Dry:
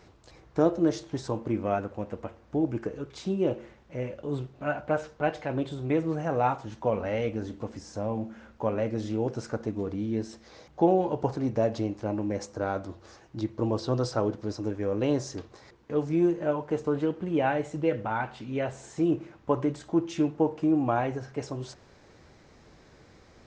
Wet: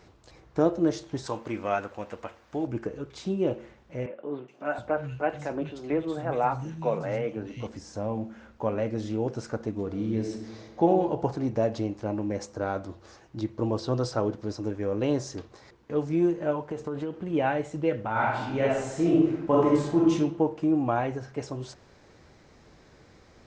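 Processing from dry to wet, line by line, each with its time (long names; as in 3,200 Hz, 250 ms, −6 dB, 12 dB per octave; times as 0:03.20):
0:01.26–0:02.67: tilt shelving filter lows −7.5 dB, about 630 Hz
0:04.06–0:07.67: three-band delay without the direct sound mids, highs, lows 420/720 ms, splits 200/2,900 Hz
0:09.86–0:10.88: thrown reverb, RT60 1.3 s, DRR 3 dB
0:16.69–0:17.33: downward compressor, threshold −28 dBFS
0:18.11–0:20.11: thrown reverb, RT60 0.87 s, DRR −5.5 dB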